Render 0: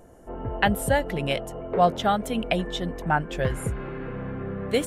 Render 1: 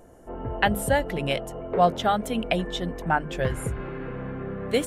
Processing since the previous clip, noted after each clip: notches 50/100/150/200 Hz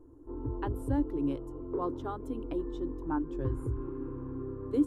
EQ curve 120 Hz 0 dB, 200 Hz -25 dB, 290 Hz +10 dB, 690 Hz -23 dB, 1000 Hz -4 dB, 2000 Hz -28 dB, 4700 Hz -22 dB; gain -2.5 dB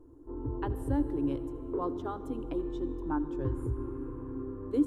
reverb RT60 2.6 s, pre-delay 67 ms, DRR 13.5 dB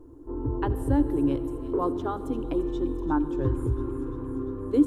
thin delay 0.346 s, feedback 69%, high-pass 3400 Hz, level -10.5 dB; gain +6.5 dB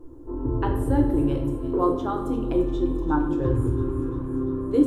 shoebox room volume 150 m³, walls mixed, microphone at 0.76 m; gain +1 dB

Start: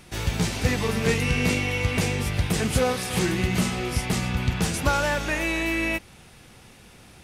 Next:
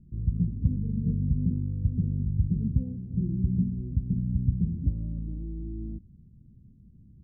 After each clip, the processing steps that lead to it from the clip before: inverse Chebyshev low-pass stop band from 1000 Hz, stop band 70 dB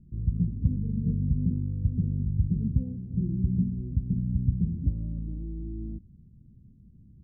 nothing audible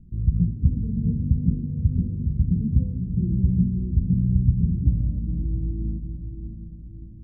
tilt -2 dB/oct; notches 50/100/150/200/250 Hz; diffused feedback echo 0.584 s, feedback 46%, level -8 dB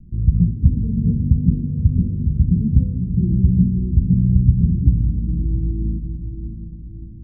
steep low-pass 500 Hz 48 dB/oct; gain +5.5 dB

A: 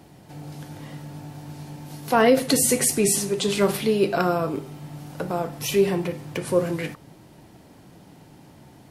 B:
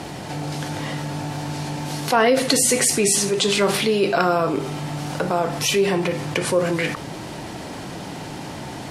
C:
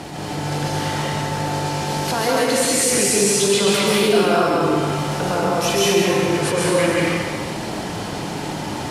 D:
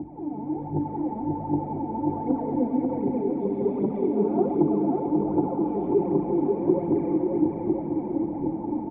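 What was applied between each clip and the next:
LPF 8600 Hz 12 dB/oct; low shelf 410 Hz -8 dB; fast leveller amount 50%; gain +2.5 dB
limiter -14 dBFS, peak gain reduction 10 dB; plate-style reverb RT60 1.7 s, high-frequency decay 1×, pre-delay 0.115 s, DRR -5 dB; attack slew limiter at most 100 dB/s
phaser 1.3 Hz, delay 4.9 ms, feedback 72%; vocal tract filter u; bouncing-ball echo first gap 0.54 s, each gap 0.85×, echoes 5

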